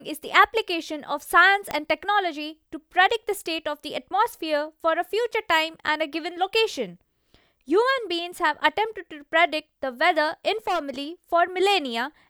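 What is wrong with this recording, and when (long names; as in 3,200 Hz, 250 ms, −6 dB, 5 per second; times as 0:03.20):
0:01.71: click −12 dBFS
0:10.67–0:11.01: clipping −21 dBFS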